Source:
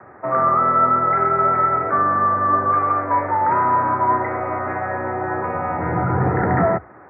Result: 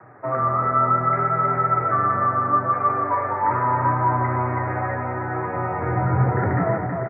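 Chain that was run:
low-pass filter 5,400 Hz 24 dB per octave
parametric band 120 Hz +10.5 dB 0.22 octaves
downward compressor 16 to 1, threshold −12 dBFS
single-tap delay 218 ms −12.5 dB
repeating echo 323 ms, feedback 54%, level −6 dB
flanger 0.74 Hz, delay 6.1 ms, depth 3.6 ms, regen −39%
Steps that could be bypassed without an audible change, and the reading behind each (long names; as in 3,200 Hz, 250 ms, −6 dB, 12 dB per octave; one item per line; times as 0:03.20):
low-pass filter 5,400 Hz: nothing at its input above 2,200 Hz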